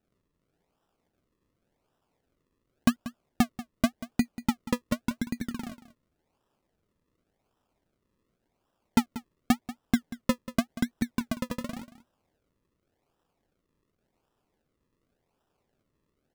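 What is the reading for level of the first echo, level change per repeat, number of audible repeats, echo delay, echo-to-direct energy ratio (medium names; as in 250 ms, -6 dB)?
-15.5 dB, no regular repeats, 1, 187 ms, -15.5 dB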